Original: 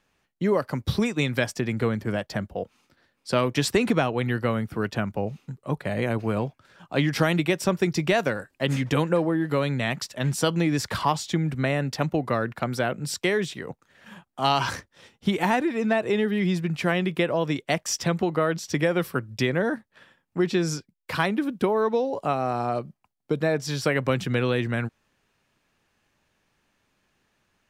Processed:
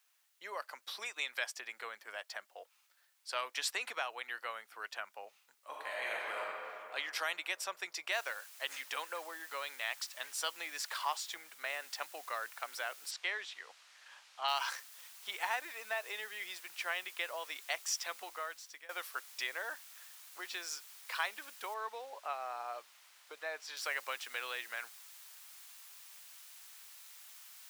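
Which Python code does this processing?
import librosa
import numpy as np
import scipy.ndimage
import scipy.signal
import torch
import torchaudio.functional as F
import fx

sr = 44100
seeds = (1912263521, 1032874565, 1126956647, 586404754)

y = fx.reverb_throw(x, sr, start_s=5.6, length_s=0.8, rt60_s=2.8, drr_db=-5.0)
y = fx.noise_floor_step(y, sr, seeds[0], at_s=8.12, before_db=-67, after_db=-47, tilt_db=0.0)
y = fx.band_widen(y, sr, depth_pct=40, at=(11.34, 11.84))
y = fx.lowpass(y, sr, hz=4800.0, slope=12, at=(13.1, 14.47), fade=0.02)
y = fx.lowpass(y, sr, hz=3100.0, slope=6, at=(21.74, 23.77))
y = fx.edit(y, sr, fx.fade_out_to(start_s=18.18, length_s=0.71, floor_db=-19.5), tone=tone)
y = scipy.signal.sosfilt(scipy.signal.bessel(4, 1100.0, 'highpass', norm='mag', fs=sr, output='sos'), y)
y = F.gain(torch.from_numpy(y), -7.5).numpy()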